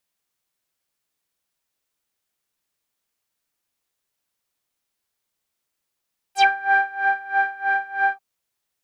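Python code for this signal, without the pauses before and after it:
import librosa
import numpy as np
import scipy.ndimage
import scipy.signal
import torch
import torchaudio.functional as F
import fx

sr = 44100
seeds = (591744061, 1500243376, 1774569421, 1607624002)

y = fx.sub_patch_tremolo(sr, seeds[0], note=79, wave='triangle', wave2='saw', interval_st=0, detune_cents=16, level2_db=-6.0, sub_db=-25.0, noise_db=-17.0, kind='lowpass', cutoff_hz=1100.0, q=6.7, env_oct=3.5, env_decay_s=0.1, env_sustain_pct=15, attack_ms=64.0, decay_s=0.65, sustain_db=-6, release_s=0.07, note_s=1.77, lfo_hz=3.1, tremolo_db=20.5)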